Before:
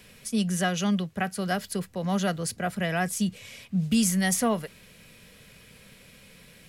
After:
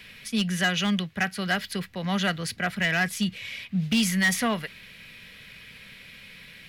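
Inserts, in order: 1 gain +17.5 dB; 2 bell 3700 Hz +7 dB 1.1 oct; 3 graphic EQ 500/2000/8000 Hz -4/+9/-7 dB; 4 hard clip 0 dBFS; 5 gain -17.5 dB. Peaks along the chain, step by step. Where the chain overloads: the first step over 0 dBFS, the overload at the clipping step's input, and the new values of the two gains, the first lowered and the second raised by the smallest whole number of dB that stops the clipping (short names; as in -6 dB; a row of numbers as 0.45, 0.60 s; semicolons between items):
+5.5, +6.5, +9.5, 0.0, -17.5 dBFS; step 1, 9.5 dB; step 1 +7.5 dB, step 5 -7.5 dB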